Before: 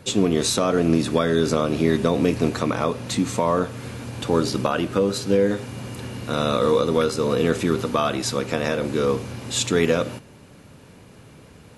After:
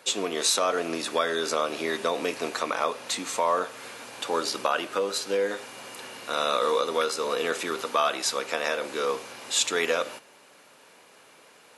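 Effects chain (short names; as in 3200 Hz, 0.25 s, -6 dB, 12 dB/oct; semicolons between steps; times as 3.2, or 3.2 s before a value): HPF 640 Hz 12 dB/oct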